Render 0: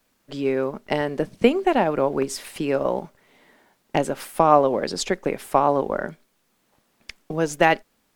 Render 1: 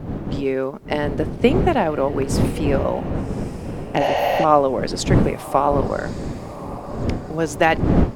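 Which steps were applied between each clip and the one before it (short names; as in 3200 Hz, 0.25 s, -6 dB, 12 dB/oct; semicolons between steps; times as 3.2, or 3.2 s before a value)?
wind noise 260 Hz -25 dBFS; diffused feedback echo 1.158 s, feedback 44%, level -15 dB; spectral repair 4.03–4.42, 460–11000 Hz before; gain +1 dB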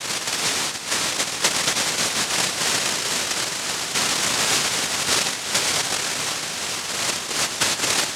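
noise vocoder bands 1; compressor 2.5:1, threshold -25 dBFS, peak gain reduction 11.5 dB; diffused feedback echo 0.453 s, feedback 49%, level -9 dB; gain +3 dB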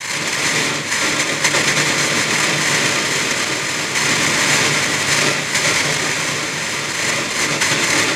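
reverb RT60 0.40 s, pre-delay 91 ms, DRR 0.5 dB; gain -1.5 dB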